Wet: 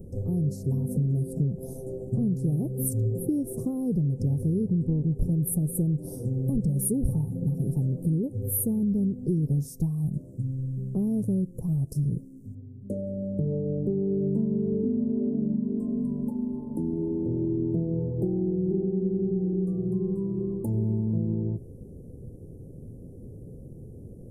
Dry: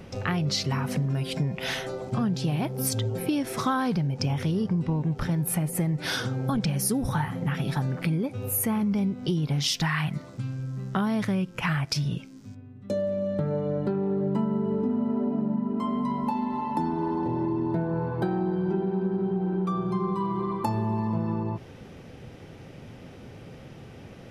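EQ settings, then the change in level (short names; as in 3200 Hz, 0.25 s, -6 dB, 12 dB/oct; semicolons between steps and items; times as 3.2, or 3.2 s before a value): elliptic band-stop 460–9300 Hz, stop band 80 dB; low shelf 67 Hz +12 dB; 0.0 dB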